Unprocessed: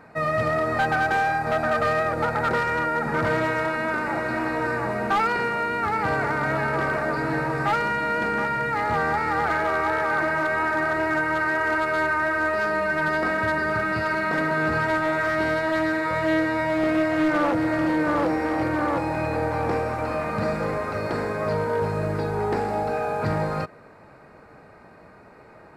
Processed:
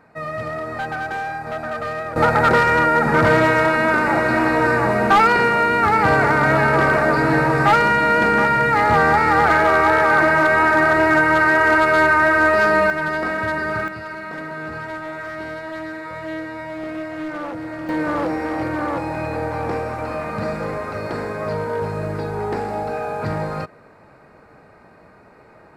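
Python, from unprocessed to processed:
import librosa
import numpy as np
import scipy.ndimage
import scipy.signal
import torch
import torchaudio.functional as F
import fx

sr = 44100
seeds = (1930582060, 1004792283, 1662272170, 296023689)

y = fx.gain(x, sr, db=fx.steps((0.0, -4.0), (2.16, 8.5), (12.9, 1.0), (13.88, -7.0), (17.89, 0.5)))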